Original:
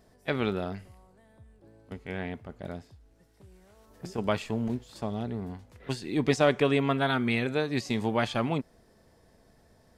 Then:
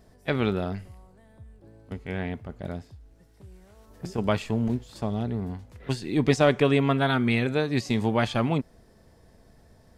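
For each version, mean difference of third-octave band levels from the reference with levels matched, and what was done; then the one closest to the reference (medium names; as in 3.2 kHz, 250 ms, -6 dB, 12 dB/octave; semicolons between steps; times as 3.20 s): 1.5 dB: bass shelf 160 Hz +6.5 dB; trim +2 dB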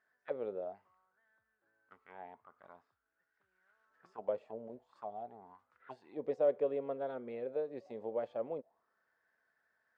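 11.0 dB: auto-wah 520–1600 Hz, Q 6.6, down, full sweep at -25.5 dBFS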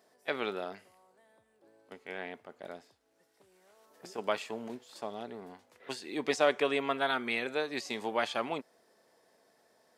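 5.0 dB: high-pass 420 Hz 12 dB/octave; trim -2 dB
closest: first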